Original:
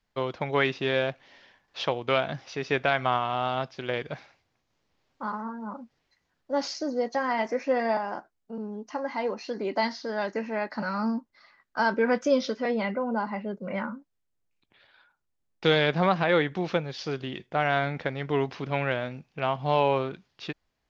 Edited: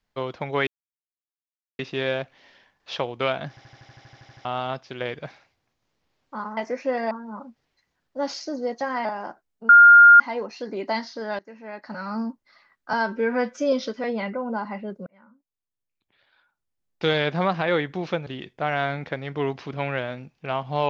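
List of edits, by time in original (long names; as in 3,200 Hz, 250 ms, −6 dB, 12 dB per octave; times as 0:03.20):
0:00.67: splice in silence 1.12 s
0:02.37: stutter in place 0.08 s, 12 plays
0:07.39–0:07.93: move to 0:05.45
0:08.57–0:09.08: beep over 1,410 Hz −6.5 dBFS
0:10.27–0:11.16: fade in, from −20 dB
0:11.81–0:12.34: time-stretch 1.5×
0:13.68–0:15.78: fade in
0:16.88–0:17.20: remove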